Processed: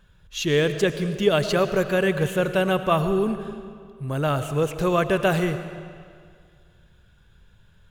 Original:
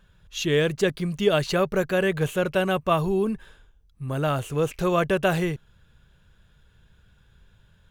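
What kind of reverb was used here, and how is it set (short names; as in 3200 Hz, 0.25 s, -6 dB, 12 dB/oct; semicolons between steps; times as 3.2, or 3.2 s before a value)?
digital reverb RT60 2.1 s, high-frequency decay 0.85×, pre-delay 60 ms, DRR 10 dB; gain +1 dB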